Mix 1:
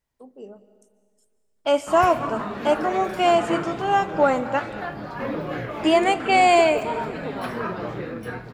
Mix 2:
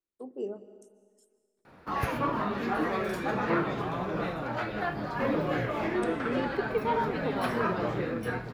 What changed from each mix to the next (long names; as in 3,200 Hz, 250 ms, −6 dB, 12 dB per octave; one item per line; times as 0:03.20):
first voice: add parametric band 350 Hz +12 dB 0.52 octaves
second voice: muted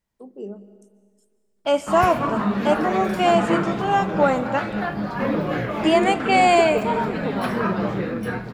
second voice: unmuted
background +4.5 dB
master: add parametric band 200 Hz +11.5 dB 0.21 octaves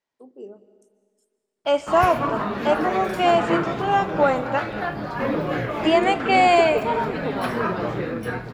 first voice −4.0 dB
second voice: add band-pass filter 280–6,100 Hz
master: add parametric band 200 Hz −11.5 dB 0.21 octaves